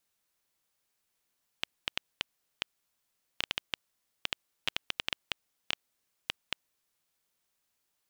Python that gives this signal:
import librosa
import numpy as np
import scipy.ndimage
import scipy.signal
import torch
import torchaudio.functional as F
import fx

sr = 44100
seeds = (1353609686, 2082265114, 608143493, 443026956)

y = fx.geiger_clicks(sr, seeds[0], length_s=5.31, per_s=4.6, level_db=-11.0)